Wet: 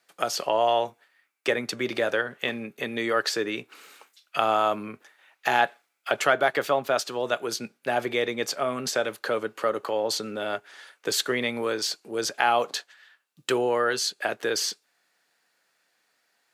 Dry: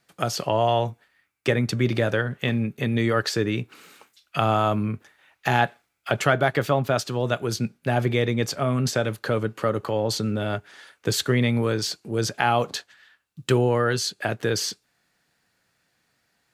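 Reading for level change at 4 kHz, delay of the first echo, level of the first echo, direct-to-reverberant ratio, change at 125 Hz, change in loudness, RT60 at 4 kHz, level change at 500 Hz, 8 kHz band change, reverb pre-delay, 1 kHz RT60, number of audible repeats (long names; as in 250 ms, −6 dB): 0.0 dB, no echo audible, no echo audible, no reverb audible, −20.5 dB, −2.5 dB, no reverb audible, −1.5 dB, 0.0 dB, no reverb audible, no reverb audible, no echo audible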